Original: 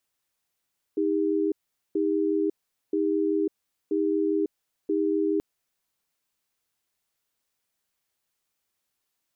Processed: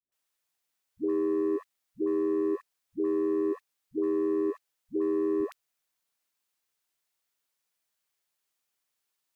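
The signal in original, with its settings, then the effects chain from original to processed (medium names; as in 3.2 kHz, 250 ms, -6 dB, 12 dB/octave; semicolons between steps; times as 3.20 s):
cadence 315 Hz, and 401 Hz, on 0.55 s, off 0.43 s, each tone -24.5 dBFS 4.43 s
bass shelf 370 Hz -7.5 dB; waveshaping leveller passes 1; phase dispersion highs, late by 122 ms, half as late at 400 Hz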